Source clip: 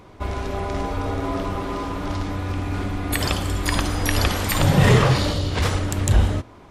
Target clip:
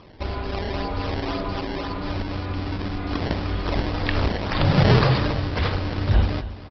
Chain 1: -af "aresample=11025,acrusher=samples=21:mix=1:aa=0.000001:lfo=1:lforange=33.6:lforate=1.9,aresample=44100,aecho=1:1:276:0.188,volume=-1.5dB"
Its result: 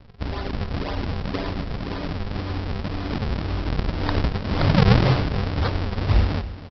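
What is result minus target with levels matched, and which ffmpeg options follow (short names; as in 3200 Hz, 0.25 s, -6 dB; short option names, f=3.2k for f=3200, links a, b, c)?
decimation with a swept rate: distortion +8 dB
-af "aresample=11025,acrusher=samples=5:mix=1:aa=0.000001:lfo=1:lforange=8:lforate=1.9,aresample=44100,aecho=1:1:276:0.188,volume=-1.5dB"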